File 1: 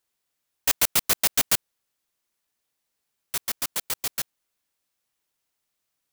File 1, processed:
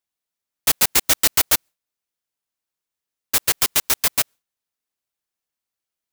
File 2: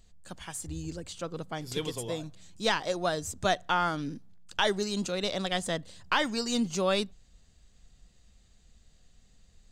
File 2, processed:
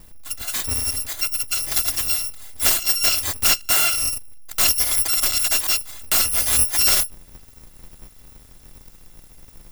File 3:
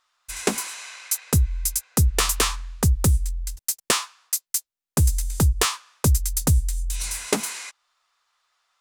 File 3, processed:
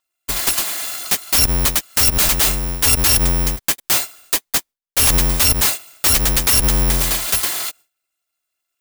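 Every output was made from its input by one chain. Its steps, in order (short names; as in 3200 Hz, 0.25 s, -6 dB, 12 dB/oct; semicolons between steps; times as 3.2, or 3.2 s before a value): FFT order left unsorted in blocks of 256 samples; in parallel at +1.5 dB: compressor 8:1, threshold -32 dBFS; on the sum: gate with hold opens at -48 dBFS; wrapped overs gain 15.5 dB; gain +7 dB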